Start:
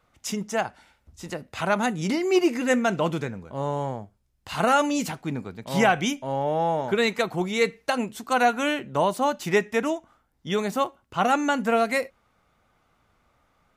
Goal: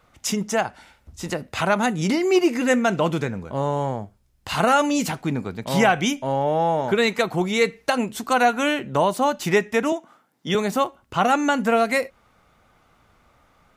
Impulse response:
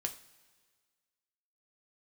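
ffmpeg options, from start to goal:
-filter_complex "[0:a]asettb=1/sr,asplit=3[a][b][c];[a]atrim=end=9.924[d];[b]atrim=start=9.92:end=10.55,asetpts=PTS-STARTPTS,afade=t=in:d=0.004:c=qsin,afade=t=out:st=0.626:d=0.004:c=qsin,highpass=f=160:w=0.5412,highpass=f=160:w=1.3066[e];[c]atrim=start=10.546[f];[d][e]acrossfade=d=0.004:c1=hsin:c2=qsin[g];[g][f]acrossfade=d=0.004:c1=qsin:c2=hsin,asplit=2[h][i];[i]acompressor=threshold=-30dB:ratio=6,volume=2.5dB[j];[h][j]amix=inputs=2:normalize=0"

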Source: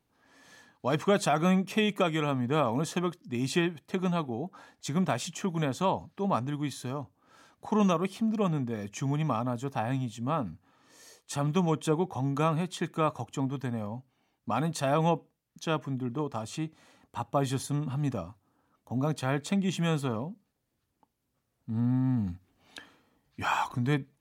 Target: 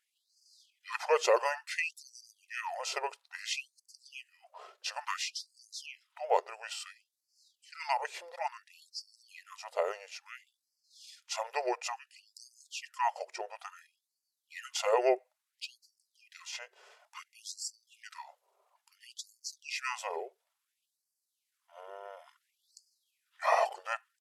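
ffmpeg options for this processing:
-af "asetrate=34006,aresample=44100,atempo=1.29684,afftfilt=real='re*gte(b*sr/1024,360*pow(4400/360,0.5+0.5*sin(2*PI*0.58*pts/sr)))':imag='im*gte(b*sr/1024,360*pow(4400/360,0.5+0.5*sin(2*PI*0.58*pts/sr)))':win_size=1024:overlap=0.75,volume=2dB"

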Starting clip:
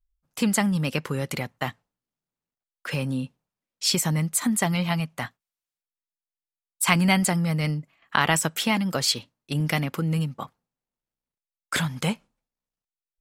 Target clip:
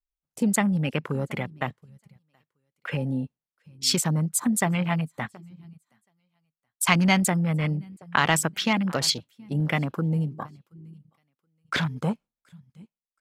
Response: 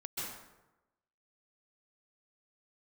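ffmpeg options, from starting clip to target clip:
-af "aecho=1:1:725|1450:0.1|0.029,afwtdn=0.02"

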